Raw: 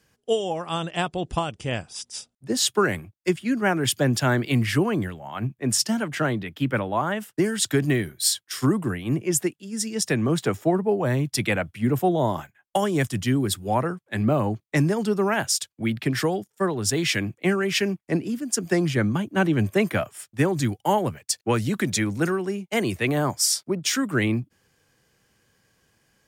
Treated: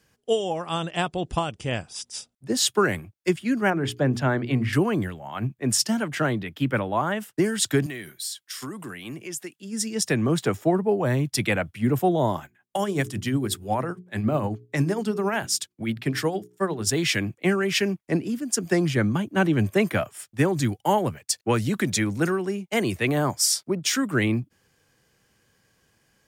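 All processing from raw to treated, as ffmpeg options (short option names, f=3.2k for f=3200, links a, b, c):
-filter_complex "[0:a]asettb=1/sr,asplit=3[a][b][c];[a]atrim=end=3.704[d];[b]atrim=start=3.7:end=4.73,asetpts=PTS-STARTPTS,afade=t=in:d=0.004:c=qsin,afade=t=out:st=1.026:d=0.004:c=qsin,lowpass=f=1.6k:p=1,bandreject=f=60:t=h:w=6,bandreject=f=120:t=h:w=6,bandreject=f=180:t=h:w=6,bandreject=f=240:t=h:w=6,bandreject=f=300:t=h:w=6,bandreject=f=360:t=h:w=6,bandreject=f=420:t=h:w=6[e];[c]atrim=start=4.726[f];[d][e]acrossfade=d=0.004:c1=hsin:c2=qsin[g];[g][f]acrossfade=d=0.004:c1=qsin:c2=hsin,asettb=1/sr,asplit=3[h][i][j];[h]atrim=end=7.864[k];[i]atrim=start=7.86:end=9.6,asetpts=PTS-STARTPTS,afade=t=in:d=0.004:c=qsin,afade=t=out:st=1.736:d=0.004:c=qsin,highpass=140,tiltshelf=f=1.1k:g=-5,acompressor=threshold=-34dB:ratio=3:attack=3.2:release=140:knee=1:detection=peak[l];[j]atrim=start=9.596[m];[k][l]acrossfade=d=0.004:c1=hsin:c2=qsin[n];[n][m]acrossfade=d=0.004:c1=qsin:c2=hsin,asettb=1/sr,asplit=3[o][p][q];[o]atrim=end=12.364[r];[p]atrim=start=12.36:end=16.87,asetpts=PTS-STARTPTS,afade=t=in:d=0.004:c=qsin,afade=t=out:st=4.506:d=0.004:c=qsin,bandreject=f=60:t=h:w=6,bandreject=f=120:t=h:w=6,bandreject=f=180:t=h:w=6,bandreject=f=240:t=h:w=6,bandreject=f=300:t=h:w=6,bandreject=f=360:t=h:w=6,bandreject=f=420:t=h:w=6,tremolo=f=11:d=0.47[s];[q]atrim=start=16.866[t];[r][s]acrossfade=d=0.004:c1=hsin:c2=qsin[u];[u][t]acrossfade=d=0.004:c1=qsin:c2=hsin"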